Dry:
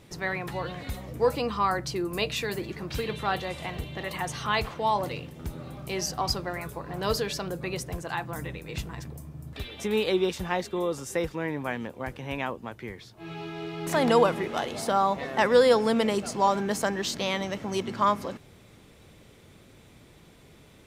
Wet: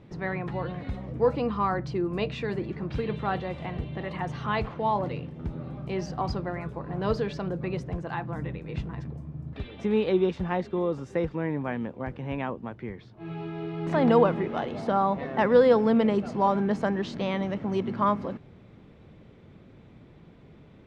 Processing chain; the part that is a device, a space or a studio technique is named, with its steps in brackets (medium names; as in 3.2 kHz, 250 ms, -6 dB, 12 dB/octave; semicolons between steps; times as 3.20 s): phone in a pocket (low-pass 3.8 kHz 12 dB/octave; peaking EQ 180 Hz +5 dB 1.6 oct; treble shelf 2.2 kHz -9.5 dB)